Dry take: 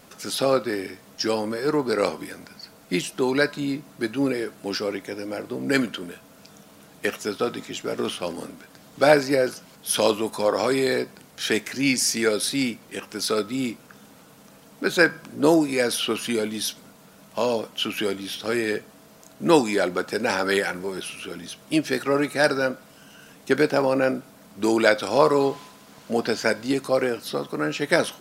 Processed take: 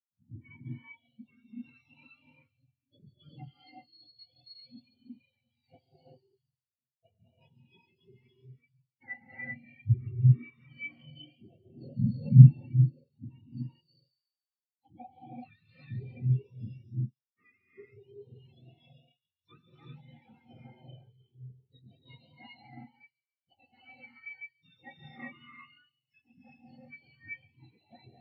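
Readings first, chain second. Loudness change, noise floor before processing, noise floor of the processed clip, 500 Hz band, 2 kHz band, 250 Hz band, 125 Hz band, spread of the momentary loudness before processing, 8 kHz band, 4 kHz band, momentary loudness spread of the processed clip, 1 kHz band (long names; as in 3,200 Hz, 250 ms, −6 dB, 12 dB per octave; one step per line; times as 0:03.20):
−1.5 dB, −51 dBFS, below −85 dBFS, below −35 dB, −22.0 dB, −12.5 dB, +10.5 dB, 13 LU, below −40 dB, below −25 dB, 27 LU, below −25 dB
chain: frequency axis turned over on the octave scale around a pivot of 1,100 Hz
Chebyshev low-pass filter 5,600 Hz, order 6
noise gate with hold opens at −34 dBFS
treble cut that deepens with the level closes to 2,500 Hz, closed at −19 dBFS
on a send: delay with a high-pass on its return 141 ms, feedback 69%, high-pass 3,800 Hz, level −3 dB
on the sum: reverb whose tail is shaped and stops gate 420 ms rising, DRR −4 dB
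every bin expanded away from the loudest bin 2.5 to 1
level −2.5 dB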